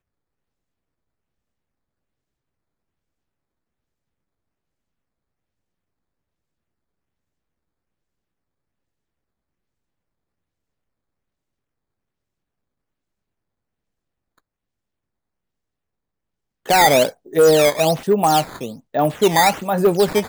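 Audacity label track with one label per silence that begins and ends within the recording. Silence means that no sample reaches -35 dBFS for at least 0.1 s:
17.110000	17.260000	silence
18.770000	18.940000	silence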